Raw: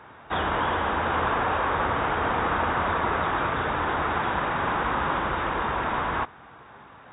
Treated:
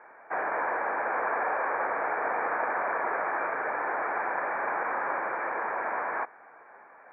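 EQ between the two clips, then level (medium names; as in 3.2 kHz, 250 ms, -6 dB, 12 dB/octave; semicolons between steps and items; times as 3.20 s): high-pass 450 Hz 12 dB/octave; rippled Chebyshev low-pass 2.4 kHz, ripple 6 dB; 0.0 dB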